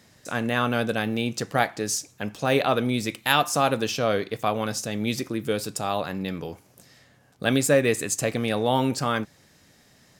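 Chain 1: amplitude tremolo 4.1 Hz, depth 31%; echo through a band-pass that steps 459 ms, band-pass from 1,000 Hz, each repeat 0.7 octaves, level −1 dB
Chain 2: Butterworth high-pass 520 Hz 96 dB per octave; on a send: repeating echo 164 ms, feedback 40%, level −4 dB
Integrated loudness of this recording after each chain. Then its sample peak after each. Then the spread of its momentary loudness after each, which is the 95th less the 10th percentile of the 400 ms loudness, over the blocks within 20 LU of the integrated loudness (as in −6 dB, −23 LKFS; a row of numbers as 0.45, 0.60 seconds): −26.0, −25.5 LKFS; −5.5, −4.5 dBFS; 11, 11 LU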